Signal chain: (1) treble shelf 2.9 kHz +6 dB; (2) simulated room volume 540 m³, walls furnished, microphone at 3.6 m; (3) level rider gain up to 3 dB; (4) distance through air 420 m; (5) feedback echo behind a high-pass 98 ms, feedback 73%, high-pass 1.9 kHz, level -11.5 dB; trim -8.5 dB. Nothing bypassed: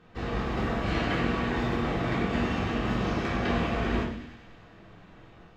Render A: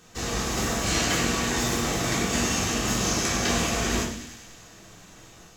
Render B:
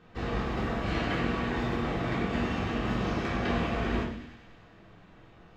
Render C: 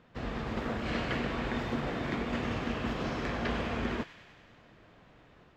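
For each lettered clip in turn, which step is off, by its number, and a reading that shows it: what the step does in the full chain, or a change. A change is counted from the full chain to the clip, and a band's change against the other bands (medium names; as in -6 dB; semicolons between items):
4, 4 kHz band +10.0 dB; 3, loudness change -2.0 LU; 2, momentary loudness spread change -1 LU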